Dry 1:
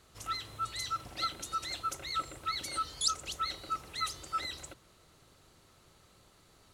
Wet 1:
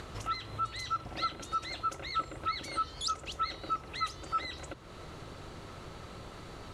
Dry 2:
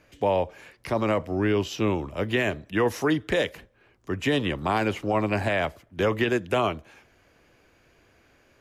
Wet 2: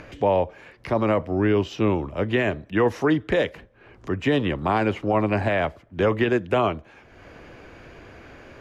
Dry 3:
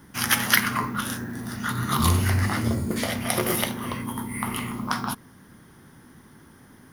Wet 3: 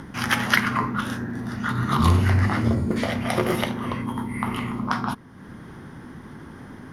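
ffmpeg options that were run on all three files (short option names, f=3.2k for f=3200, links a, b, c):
-af "acompressor=mode=upward:threshold=-34dB:ratio=2.5,aemphasis=mode=reproduction:type=75fm,volume=2.5dB"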